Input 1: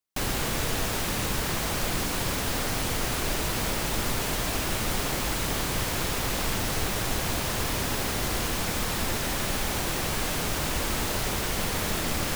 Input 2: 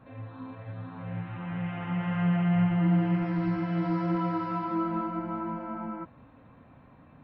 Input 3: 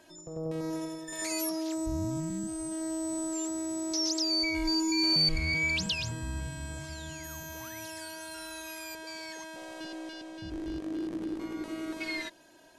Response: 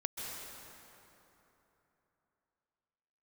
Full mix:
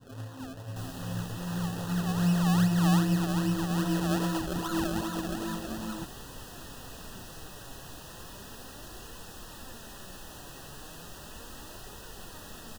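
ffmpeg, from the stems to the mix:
-filter_complex "[0:a]flanger=delay=1.9:depth=5.6:regen=70:speed=0.35:shape=triangular,adelay=600,volume=-12.5dB[a];[1:a]adynamicequalizer=threshold=0.00501:dfrequency=760:dqfactor=1.3:tfrequency=760:tqfactor=1.3:attack=5:release=100:ratio=0.375:range=2.5:mode=cutabove:tftype=bell,acrusher=samples=32:mix=1:aa=0.000001:lfo=1:lforange=32:lforate=2.5,volume=0.5dB[b];[a][b]amix=inputs=2:normalize=0,asuperstop=centerf=2200:order=20:qfactor=4"

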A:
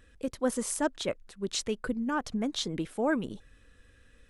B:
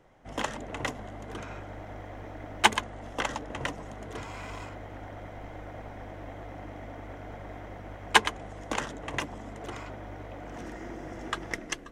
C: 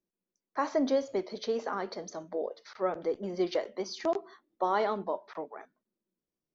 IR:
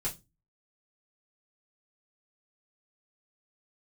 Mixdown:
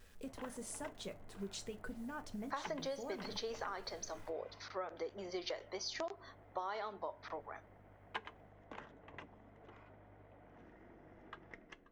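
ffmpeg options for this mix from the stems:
-filter_complex "[0:a]acompressor=threshold=-42dB:ratio=2.5,acrusher=bits=9:mix=0:aa=0.000001,volume=-7.5dB,asplit=2[a][b];[b]volume=-7.5dB[c];[1:a]lowpass=2.6k,volume=-19.5dB,asplit=2[d][e];[e]volume=-17dB[f];[2:a]highpass=f=1.2k:p=1,adelay=1950,volume=1dB[g];[3:a]atrim=start_sample=2205[h];[c][f]amix=inputs=2:normalize=0[i];[i][h]afir=irnorm=-1:irlink=0[j];[a][d][g][j]amix=inputs=4:normalize=0,acompressor=threshold=-38dB:ratio=6"

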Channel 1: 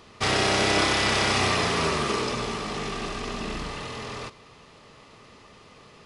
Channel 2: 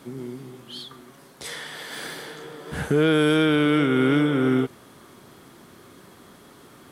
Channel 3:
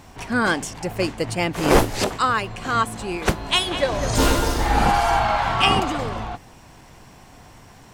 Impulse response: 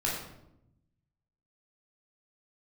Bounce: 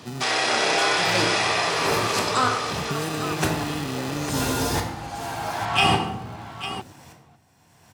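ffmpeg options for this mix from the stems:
-filter_complex "[0:a]highpass=f=430:w=0.5412,highpass=f=430:w=1.3066,volume=2dB,asplit=2[a][b];[b]volume=-9dB[c];[1:a]acrusher=samples=40:mix=1:aa=0.000001,volume=-2.5dB[d];[2:a]aemphasis=mode=production:type=50kf,aeval=exprs='val(0)*pow(10,-26*if(lt(mod(-0.86*n/s,1),2*abs(-0.86)/1000),1-mod(-0.86*n/s,1)/(2*abs(-0.86)/1000),(mod(-0.86*n/s,1)-2*abs(-0.86)/1000)/(1-2*abs(-0.86)/1000))/20)':c=same,adelay=150,volume=-5dB,asplit=3[e][f][g];[f]volume=-4.5dB[h];[g]volume=-7dB[i];[a][d]amix=inputs=2:normalize=0,bass=f=250:g=9,treble=f=4k:g=9,acompressor=threshold=-27dB:ratio=5,volume=0dB[j];[3:a]atrim=start_sample=2205[k];[c][h]amix=inputs=2:normalize=0[l];[l][k]afir=irnorm=-1:irlink=0[m];[i]aecho=0:1:852:1[n];[e][j][m][n]amix=inputs=4:normalize=0,highpass=f=82:w=0.5412,highpass=f=82:w=1.3066,highshelf=f=9.3k:g=-8"

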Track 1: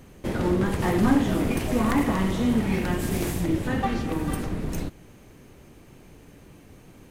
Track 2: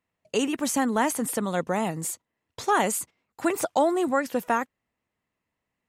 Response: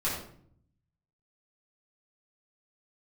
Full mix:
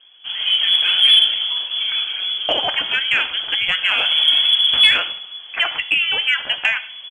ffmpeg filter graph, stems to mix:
-filter_complex "[0:a]flanger=delay=0.3:depth=4.8:regen=33:speed=1.4:shape=triangular,volume=4.5dB,afade=t=out:st=1.05:d=0.49:silence=0.375837,afade=t=in:st=3.75:d=0.47:silence=0.237137,asplit=2[a][b];[b]volume=-10.5dB[c];[1:a]tiltshelf=f=910:g=-8,acompressor=threshold=-28dB:ratio=4,adelay=2150,volume=-1.5dB,asplit=2[d][e];[e]volume=-17dB[f];[2:a]atrim=start_sample=2205[g];[c][f]amix=inputs=2:normalize=0[h];[h][g]afir=irnorm=-1:irlink=0[i];[a][d][i]amix=inputs=3:normalize=0,dynaudnorm=f=110:g=7:m=8.5dB,lowpass=f=2.9k:t=q:w=0.5098,lowpass=f=2.9k:t=q:w=0.6013,lowpass=f=2.9k:t=q:w=0.9,lowpass=f=2.9k:t=q:w=2.563,afreqshift=-3400,acontrast=27"

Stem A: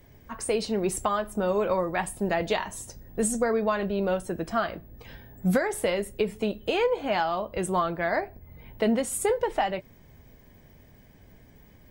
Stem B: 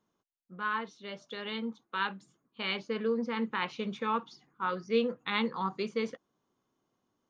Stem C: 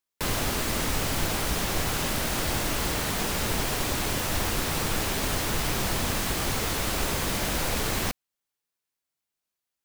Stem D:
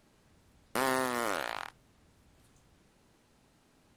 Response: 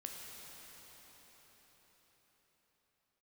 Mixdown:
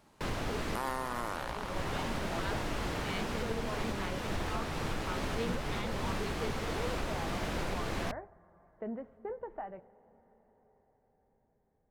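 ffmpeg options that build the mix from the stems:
-filter_complex "[0:a]lowpass=f=1.6k:w=0.5412,lowpass=f=1.6k:w=1.3066,agate=range=-8dB:threshold=-42dB:ratio=16:detection=peak,volume=-16.5dB,asplit=2[a][b];[b]volume=-13dB[c];[1:a]adelay=450,volume=-9dB[d];[2:a]aemphasis=mode=reproduction:type=75fm,volume=-6dB[e];[3:a]equalizer=f=950:t=o:w=0.83:g=7.5,volume=-1.5dB,asplit=2[f][g];[g]volume=-5.5dB[h];[4:a]atrim=start_sample=2205[i];[c][h]amix=inputs=2:normalize=0[j];[j][i]afir=irnorm=-1:irlink=0[k];[a][d][e][f][k]amix=inputs=5:normalize=0,bandreject=f=50:t=h:w=6,bandreject=f=100:t=h:w=6,alimiter=limit=-23.5dB:level=0:latency=1:release=272"

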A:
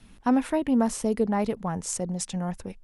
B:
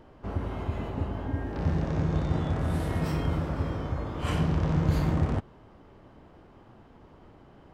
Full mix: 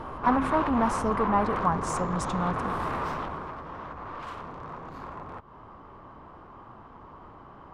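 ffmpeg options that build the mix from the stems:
-filter_complex "[0:a]bandreject=f=260.8:t=h:w=4,bandreject=f=521.6:t=h:w=4,bandreject=f=782.4:t=h:w=4,bandreject=f=1.0432k:t=h:w=4,bandreject=f=1.304k:t=h:w=4,bandreject=f=1.5648k:t=h:w=4,bandreject=f=1.8256k:t=h:w=4,bandreject=f=2.0864k:t=h:w=4,bandreject=f=2.3472k:t=h:w=4,bandreject=f=2.608k:t=h:w=4,bandreject=f=2.8688k:t=h:w=4,bandreject=f=3.1296k:t=h:w=4,bandreject=f=3.3904k:t=h:w=4,bandreject=f=3.6512k:t=h:w=4,bandreject=f=3.912k:t=h:w=4,bandreject=f=4.1728k:t=h:w=4,bandreject=f=4.4336k:t=h:w=4,bandreject=f=4.6944k:t=h:w=4,bandreject=f=4.9552k:t=h:w=4,bandreject=f=5.216k:t=h:w=4,bandreject=f=5.4768k:t=h:w=4,bandreject=f=5.7376k:t=h:w=4,bandreject=f=5.9984k:t=h:w=4,bandreject=f=6.2592k:t=h:w=4,bandreject=f=6.52k:t=h:w=4,bandreject=f=6.7808k:t=h:w=4,bandreject=f=7.0416k:t=h:w=4,bandreject=f=7.3024k:t=h:w=4,bandreject=f=7.5632k:t=h:w=4,asoftclip=type=tanh:threshold=-21.5dB,volume=-0.5dB[a];[1:a]acompressor=threshold=-33dB:ratio=16,aeval=exprs='0.0398*sin(PI/2*3.55*val(0)/0.0398)':c=same,volume=-3.5dB,afade=t=out:st=2.98:d=0.58:silence=0.334965[b];[a][b]amix=inputs=2:normalize=0,lowpass=f=3.7k:p=1,equalizer=f=1.1k:w=1.9:g=15"

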